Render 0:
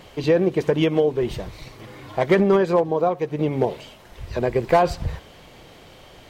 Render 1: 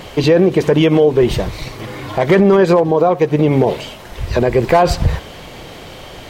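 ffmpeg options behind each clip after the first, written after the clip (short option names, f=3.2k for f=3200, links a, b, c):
-af "alimiter=level_in=15dB:limit=-1dB:release=50:level=0:latency=1,volume=-2.5dB"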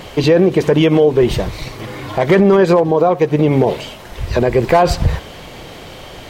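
-af anull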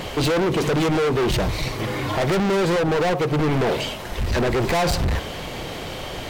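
-af "asoftclip=type=hard:threshold=-21dB,volume=2.5dB"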